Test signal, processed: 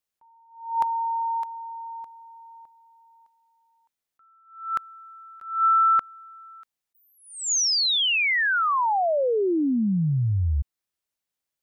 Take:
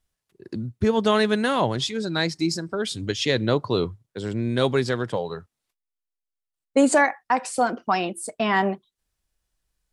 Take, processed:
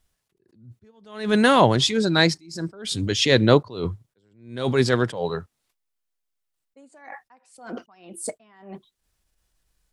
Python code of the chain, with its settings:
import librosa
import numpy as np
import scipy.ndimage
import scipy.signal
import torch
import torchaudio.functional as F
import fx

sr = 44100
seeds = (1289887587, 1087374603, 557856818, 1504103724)

y = fx.attack_slew(x, sr, db_per_s=110.0)
y = y * librosa.db_to_amplitude(6.5)